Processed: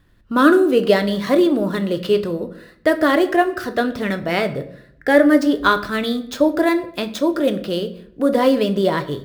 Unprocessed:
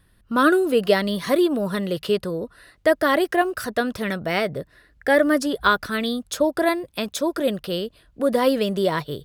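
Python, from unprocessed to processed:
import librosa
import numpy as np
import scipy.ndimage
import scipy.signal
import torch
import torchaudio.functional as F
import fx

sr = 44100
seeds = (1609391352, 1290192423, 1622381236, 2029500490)

y = scipy.signal.medfilt(x, 5)
y = fx.peak_eq(y, sr, hz=310.0, db=4.5, octaves=0.48)
y = fx.room_shoebox(y, sr, seeds[0], volume_m3=120.0, walls='mixed', distance_m=0.3)
y = y * 10.0 ** (2.0 / 20.0)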